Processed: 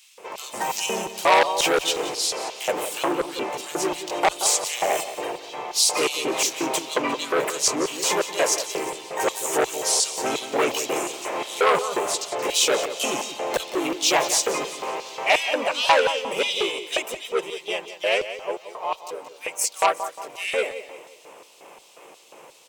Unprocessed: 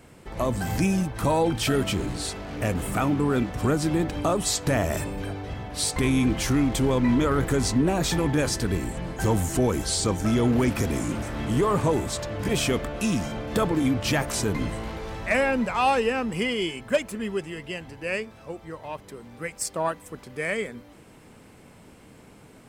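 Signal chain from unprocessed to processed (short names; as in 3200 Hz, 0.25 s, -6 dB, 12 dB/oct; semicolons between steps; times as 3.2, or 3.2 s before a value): harmoniser +3 st 0 dB; LFO high-pass square 2.8 Hz 580–4000 Hz; ripple EQ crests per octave 0.73, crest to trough 7 dB; on a send: feedback echo 0.177 s, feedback 40%, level -13 dB; on the sum: core saturation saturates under 2400 Hz; gain +2 dB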